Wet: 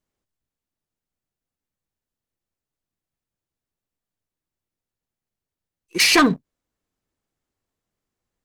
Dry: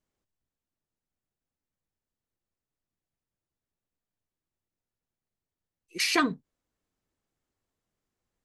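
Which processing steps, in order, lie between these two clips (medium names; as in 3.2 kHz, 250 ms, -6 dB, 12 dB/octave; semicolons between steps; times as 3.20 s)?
waveshaping leveller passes 2; trim +5.5 dB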